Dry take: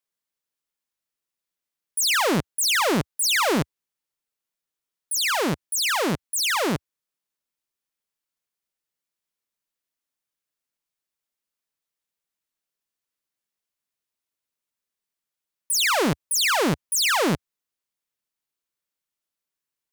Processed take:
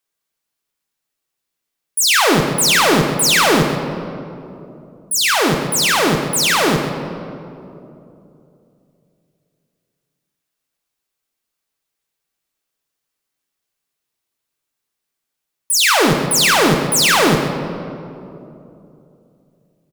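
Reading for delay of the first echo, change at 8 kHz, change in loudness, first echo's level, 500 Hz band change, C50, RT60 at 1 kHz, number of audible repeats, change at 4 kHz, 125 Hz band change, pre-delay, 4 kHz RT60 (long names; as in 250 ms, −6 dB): 130 ms, +8.0 dB, +8.0 dB, −10.0 dB, +9.5 dB, 5.0 dB, 2.6 s, 1, +8.0 dB, +9.5 dB, 3 ms, 1.4 s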